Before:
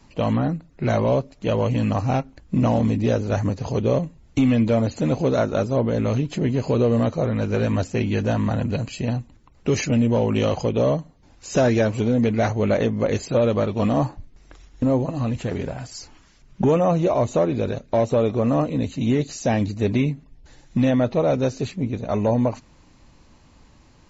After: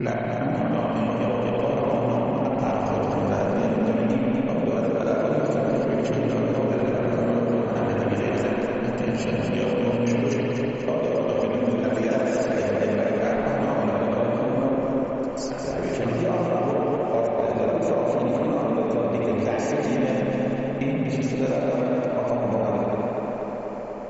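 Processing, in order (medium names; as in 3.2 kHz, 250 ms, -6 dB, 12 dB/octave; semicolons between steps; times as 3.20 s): slices played last to first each 136 ms, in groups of 7; peaking EQ 84 Hz -11 dB 1.6 oct; spring tank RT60 1.6 s, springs 59 ms, chirp 35 ms, DRR -2.5 dB; compression, threshold -22 dBFS, peak gain reduction 11 dB; peaking EQ 3.8 kHz -7.5 dB 0.36 oct; on a send: tape echo 244 ms, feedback 89%, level -3.5 dB, low-pass 4.6 kHz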